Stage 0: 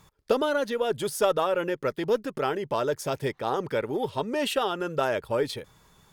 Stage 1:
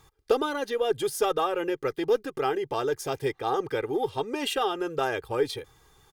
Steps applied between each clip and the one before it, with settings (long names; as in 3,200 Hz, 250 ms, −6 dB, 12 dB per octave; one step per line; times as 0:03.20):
comb filter 2.5 ms, depth 67%
level −2 dB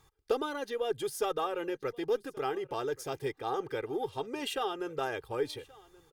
single-tap delay 1,128 ms −23 dB
level −6.5 dB